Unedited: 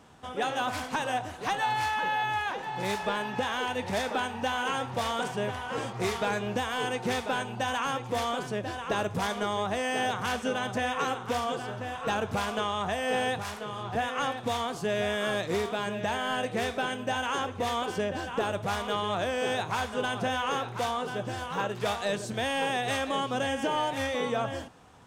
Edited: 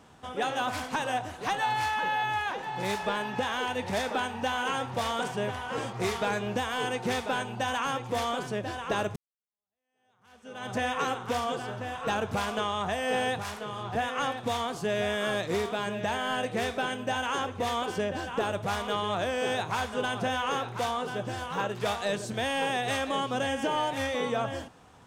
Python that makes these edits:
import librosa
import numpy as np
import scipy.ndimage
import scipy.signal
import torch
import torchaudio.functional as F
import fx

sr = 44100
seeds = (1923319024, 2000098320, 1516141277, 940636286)

y = fx.edit(x, sr, fx.fade_in_span(start_s=9.16, length_s=1.57, curve='exp'), tone=tone)